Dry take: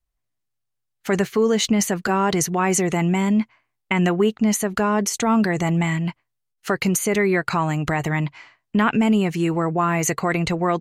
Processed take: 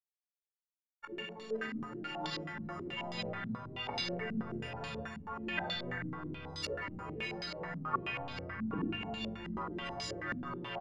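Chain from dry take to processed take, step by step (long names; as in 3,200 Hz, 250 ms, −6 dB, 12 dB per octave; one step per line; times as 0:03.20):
every partial snapped to a pitch grid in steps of 4 semitones
low-shelf EQ 150 Hz −11 dB
in parallel at +1 dB: compressor whose output falls as the input rises −18 dBFS
on the sum: gate with flip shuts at −18 dBFS, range −29 dB
flanger 0.47 Hz, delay 4.4 ms, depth 8.4 ms, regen +51%
dead-zone distortion −54.5 dBFS
single-tap delay 276 ms −11.5 dB
rectangular room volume 2,300 cubic metres, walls furnished, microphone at 4.6 metres
delay with pitch and tempo change per echo 81 ms, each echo −6 semitones, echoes 3
low-pass on a step sequencer 9.3 Hz 230–4,100 Hz
level −2 dB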